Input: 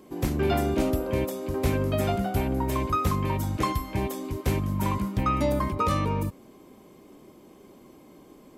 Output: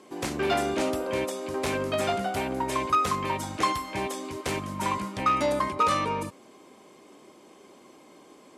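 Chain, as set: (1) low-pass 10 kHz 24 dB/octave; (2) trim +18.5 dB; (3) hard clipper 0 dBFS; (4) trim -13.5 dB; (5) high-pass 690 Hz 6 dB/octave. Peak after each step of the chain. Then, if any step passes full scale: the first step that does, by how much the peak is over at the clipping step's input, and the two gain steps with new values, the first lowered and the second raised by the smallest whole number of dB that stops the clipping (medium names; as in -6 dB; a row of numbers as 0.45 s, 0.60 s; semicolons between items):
-12.0 dBFS, +6.5 dBFS, 0.0 dBFS, -13.5 dBFS, -12.0 dBFS; step 2, 6.5 dB; step 2 +11.5 dB, step 4 -6.5 dB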